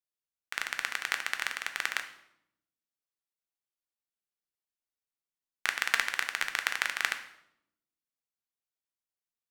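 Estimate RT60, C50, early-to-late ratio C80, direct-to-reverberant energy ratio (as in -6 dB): 0.80 s, 11.0 dB, 14.0 dB, 6.0 dB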